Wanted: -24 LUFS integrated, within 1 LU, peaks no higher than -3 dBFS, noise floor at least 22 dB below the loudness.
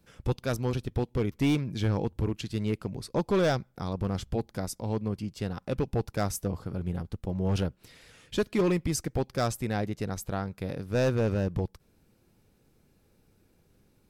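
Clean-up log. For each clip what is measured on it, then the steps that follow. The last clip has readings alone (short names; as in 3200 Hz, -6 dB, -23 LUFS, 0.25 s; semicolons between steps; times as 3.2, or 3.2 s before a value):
clipped 1.3%; flat tops at -19.5 dBFS; loudness -30.5 LUFS; peak -19.5 dBFS; loudness target -24.0 LUFS
-> clip repair -19.5 dBFS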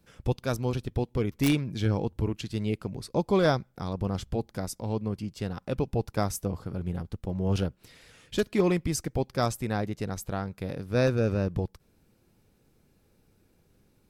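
clipped 0.0%; loudness -30.0 LUFS; peak -10.5 dBFS; loudness target -24.0 LUFS
-> gain +6 dB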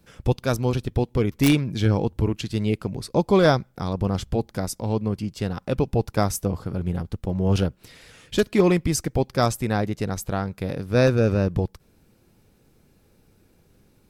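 loudness -24.0 LUFS; peak -4.5 dBFS; noise floor -60 dBFS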